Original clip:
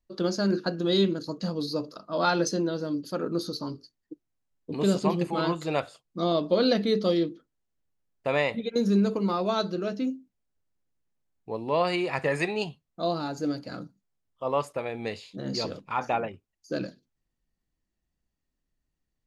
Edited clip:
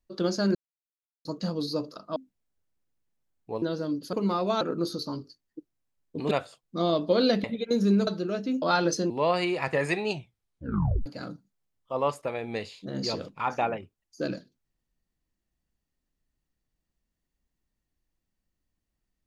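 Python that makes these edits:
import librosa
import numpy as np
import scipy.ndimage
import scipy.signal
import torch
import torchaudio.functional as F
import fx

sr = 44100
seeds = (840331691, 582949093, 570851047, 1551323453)

y = fx.edit(x, sr, fx.silence(start_s=0.55, length_s=0.7),
    fx.swap(start_s=2.16, length_s=0.48, other_s=10.15, other_length_s=1.46),
    fx.cut(start_s=4.85, length_s=0.88),
    fx.cut(start_s=6.86, length_s=1.63),
    fx.move(start_s=9.12, length_s=0.48, to_s=3.15),
    fx.tape_stop(start_s=12.6, length_s=0.97), tone=tone)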